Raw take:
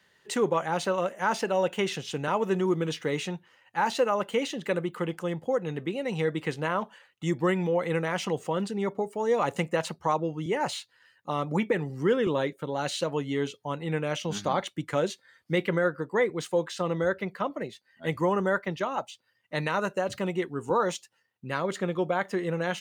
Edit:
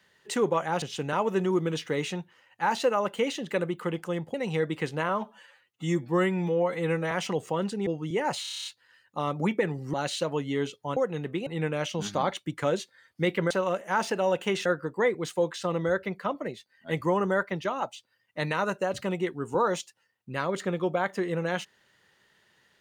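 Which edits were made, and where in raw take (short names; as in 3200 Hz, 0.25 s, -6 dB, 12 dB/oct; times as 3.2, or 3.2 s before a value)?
0.82–1.97 move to 15.81
5.49–5.99 move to 13.77
6.74–8.09 stretch 1.5×
8.84–10.22 cut
10.77 stutter 0.03 s, 9 plays
12.05–12.74 cut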